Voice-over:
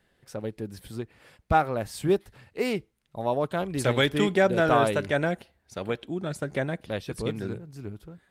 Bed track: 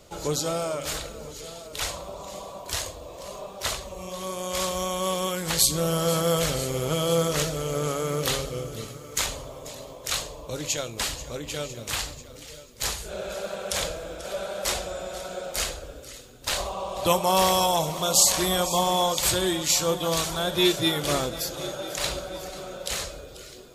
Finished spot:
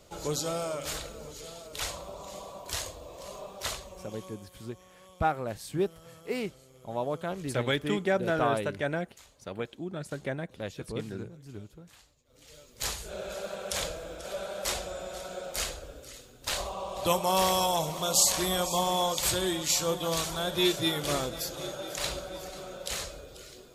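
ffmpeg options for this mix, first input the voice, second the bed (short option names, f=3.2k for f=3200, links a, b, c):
-filter_complex "[0:a]adelay=3700,volume=-5.5dB[a];[1:a]volume=19.5dB,afade=t=out:st=3.57:d=0.92:silence=0.0630957,afade=t=in:st=12.25:d=0.53:silence=0.0630957[b];[a][b]amix=inputs=2:normalize=0"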